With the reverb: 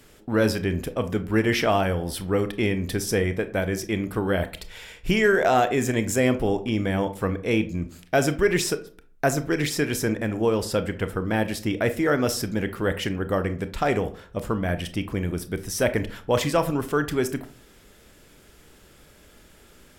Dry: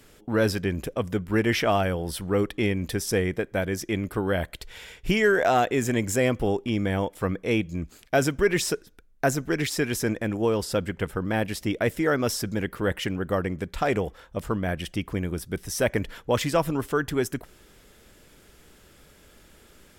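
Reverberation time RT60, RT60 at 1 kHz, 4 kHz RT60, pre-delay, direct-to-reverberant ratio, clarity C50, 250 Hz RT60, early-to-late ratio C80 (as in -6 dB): 0.45 s, 0.40 s, 0.25 s, 25 ms, 10.0 dB, 15.0 dB, 0.50 s, 20.0 dB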